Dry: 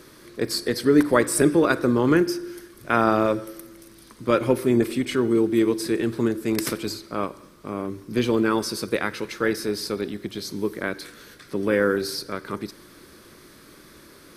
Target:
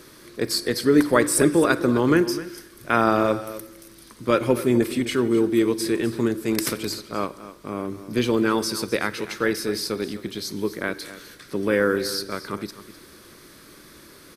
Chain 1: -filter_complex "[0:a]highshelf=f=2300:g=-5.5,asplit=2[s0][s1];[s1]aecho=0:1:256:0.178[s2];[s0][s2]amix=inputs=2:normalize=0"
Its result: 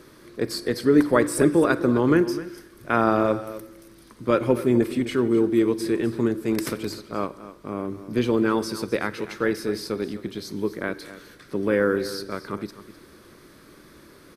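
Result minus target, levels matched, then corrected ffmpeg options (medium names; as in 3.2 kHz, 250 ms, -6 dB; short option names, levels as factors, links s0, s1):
4 kHz band -5.5 dB
-filter_complex "[0:a]highshelf=f=2300:g=3,asplit=2[s0][s1];[s1]aecho=0:1:256:0.178[s2];[s0][s2]amix=inputs=2:normalize=0"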